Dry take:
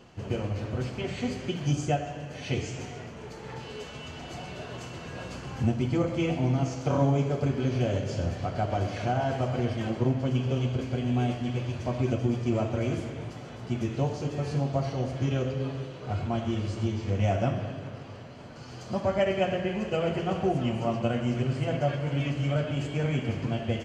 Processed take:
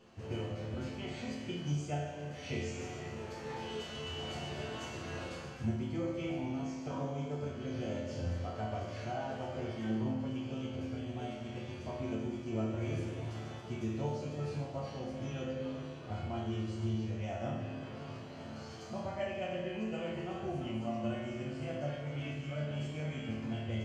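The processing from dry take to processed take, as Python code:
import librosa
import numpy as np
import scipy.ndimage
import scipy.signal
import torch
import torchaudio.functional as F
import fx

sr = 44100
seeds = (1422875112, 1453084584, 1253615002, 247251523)

p1 = fx.rider(x, sr, range_db=10, speed_s=0.5)
p2 = x + F.gain(torch.from_numpy(p1), 3.0).numpy()
y = fx.resonator_bank(p2, sr, root=38, chord='minor', decay_s=0.8)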